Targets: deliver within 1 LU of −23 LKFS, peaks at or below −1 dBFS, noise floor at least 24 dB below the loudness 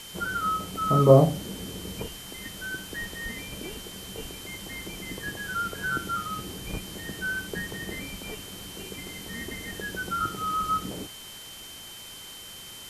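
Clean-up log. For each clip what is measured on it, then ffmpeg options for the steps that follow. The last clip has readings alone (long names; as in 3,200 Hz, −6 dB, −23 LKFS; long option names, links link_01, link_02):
interfering tone 3,100 Hz; level of the tone −44 dBFS; background noise floor −43 dBFS; target noise floor −53 dBFS; integrated loudness −29.0 LKFS; sample peak −3.5 dBFS; target loudness −23.0 LKFS
→ -af "bandreject=frequency=3100:width=30"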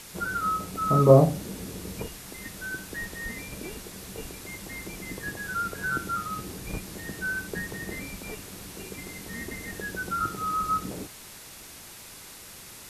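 interfering tone none found; background noise floor −46 dBFS; target noise floor −53 dBFS
→ -af "afftdn=noise_reduction=7:noise_floor=-46"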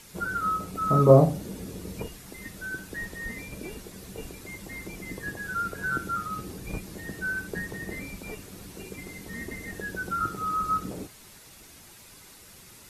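background noise floor −51 dBFS; target noise floor −53 dBFS
→ -af "afftdn=noise_reduction=6:noise_floor=-51"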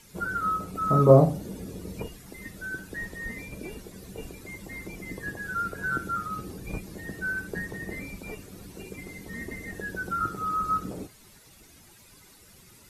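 background noise floor −54 dBFS; integrated loudness −28.5 LKFS; sample peak −3.5 dBFS; target loudness −23.0 LKFS
→ -af "volume=5.5dB,alimiter=limit=-1dB:level=0:latency=1"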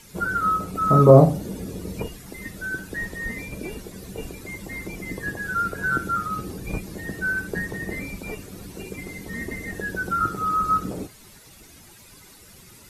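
integrated loudness −23.5 LKFS; sample peak −1.0 dBFS; background noise floor −49 dBFS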